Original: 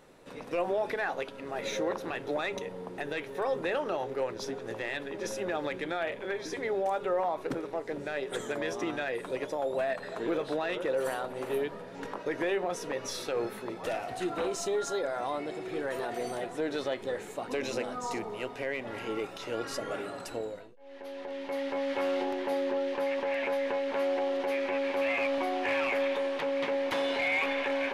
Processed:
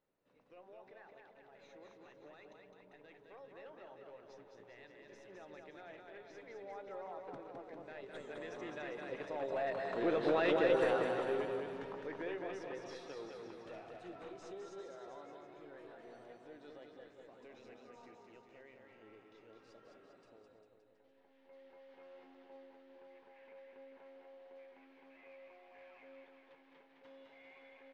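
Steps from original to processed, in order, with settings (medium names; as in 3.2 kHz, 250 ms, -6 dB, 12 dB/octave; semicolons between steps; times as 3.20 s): Doppler pass-by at 10.46 s, 8 m/s, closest 3.4 m; distance through air 110 m; bouncing-ball echo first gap 210 ms, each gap 0.9×, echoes 5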